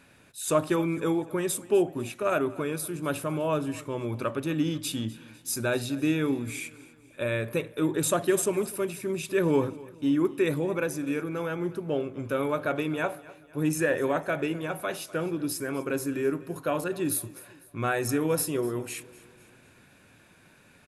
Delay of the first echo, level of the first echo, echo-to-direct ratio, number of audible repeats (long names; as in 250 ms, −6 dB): 250 ms, −20.0 dB, −19.0 dB, 3